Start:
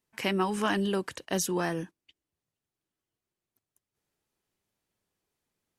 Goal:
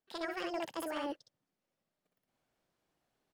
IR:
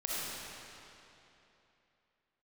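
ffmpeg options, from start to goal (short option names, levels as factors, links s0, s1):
-filter_complex "[0:a]aecho=1:1:109:0.668,asplit=2[s0][s1];[s1]acrusher=bits=2:mix=0:aa=0.5,volume=0.562[s2];[s0][s2]amix=inputs=2:normalize=0,lowpass=9400,highshelf=f=3400:g=-11,asetrate=76440,aresample=44100,areverse,acompressor=threshold=0.0141:ratio=16,areverse,volume=1.33"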